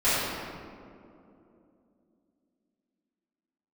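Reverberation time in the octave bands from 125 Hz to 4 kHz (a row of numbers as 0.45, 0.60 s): 3.0, 3.9, 3.2, 2.3, 1.6, 1.1 s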